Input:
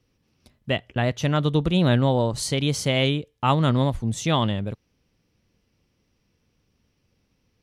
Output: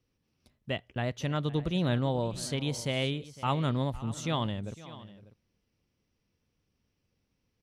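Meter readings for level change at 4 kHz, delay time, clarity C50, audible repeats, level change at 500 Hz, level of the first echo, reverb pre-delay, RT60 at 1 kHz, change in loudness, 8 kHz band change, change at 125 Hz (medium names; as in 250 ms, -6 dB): -9.0 dB, 508 ms, no reverb, 2, -9.0 dB, -18.5 dB, no reverb, no reverb, -9.0 dB, -9.0 dB, -9.0 dB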